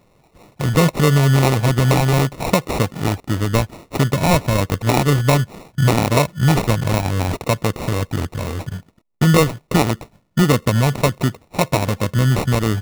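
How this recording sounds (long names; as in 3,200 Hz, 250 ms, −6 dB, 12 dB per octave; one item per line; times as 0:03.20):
aliases and images of a low sample rate 1,600 Hz, jitter 0%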